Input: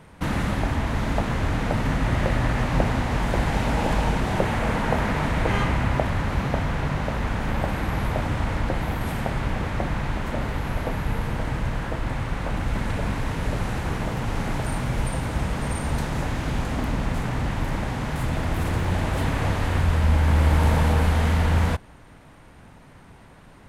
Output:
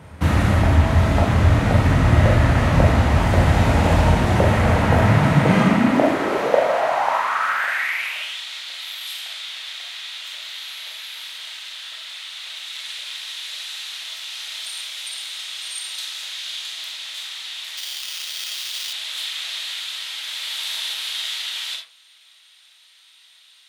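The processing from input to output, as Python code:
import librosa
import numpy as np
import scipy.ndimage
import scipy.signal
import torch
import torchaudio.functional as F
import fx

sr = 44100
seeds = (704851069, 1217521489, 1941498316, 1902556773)

y = fx.rev_freeverb(x, sr, rt60_s=0.41, hf_ratio=0.5, predelay_ms=0, drr_db=1.0)
y = fx.sample_hold(y, sr, seeds[0], rate_hz=3900.0, jitter_pct=0, at=(17.77, 18.93))
y = fx.filter_sweep_highpass(y, sr, from_hz=79.0, to_hz=3600.0, start_s=4.85, end_s=8.43, q=4.1)
y = y * 10.0 ** (3.0 / 20.0)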